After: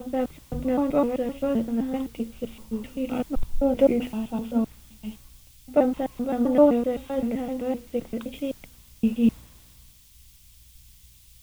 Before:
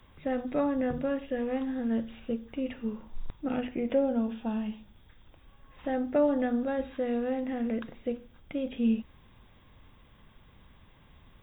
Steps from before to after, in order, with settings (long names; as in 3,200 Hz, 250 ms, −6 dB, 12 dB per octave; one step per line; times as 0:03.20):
slices reordered back to front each 129 ms, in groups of 4
parametric band 1,700 Hz −13 dB 0.26 octaves
in parallel at −7 dB: bit-depth reduction 8 bits, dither triangular
on the sum: mains hum 60 Hz, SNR 25 dB
multiband upward and downward expander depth 70%
level +1.5 dB